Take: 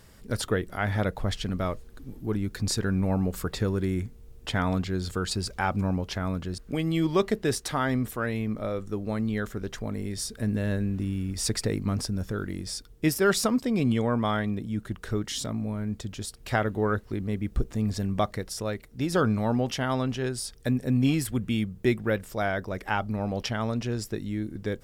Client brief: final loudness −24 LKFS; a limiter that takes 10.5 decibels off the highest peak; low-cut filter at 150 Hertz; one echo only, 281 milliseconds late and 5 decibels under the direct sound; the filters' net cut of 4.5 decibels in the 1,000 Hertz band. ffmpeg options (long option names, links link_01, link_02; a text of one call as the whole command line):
ffmpeg -i in.wav -af "highpass=150,equalizer=frequency=1000:width_type=o:gain=-6.5,alimiter=limit=-21.5dB:level=0:latency=1,aecho=1:1:281:0.562,volume=8dB" out.wav